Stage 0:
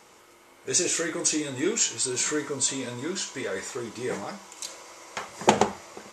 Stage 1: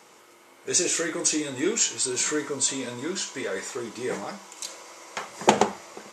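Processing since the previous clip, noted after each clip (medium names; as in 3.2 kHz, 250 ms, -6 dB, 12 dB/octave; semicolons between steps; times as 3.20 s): high-pass 140 Hz 12 dB/octave; trim +1 dB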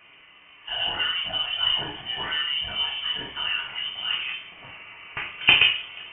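reverberation RT60 0.45 s, pre-delay 4 ms, DRR -1 dB; frequency inversion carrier 3.3 kHz; trim -1 dB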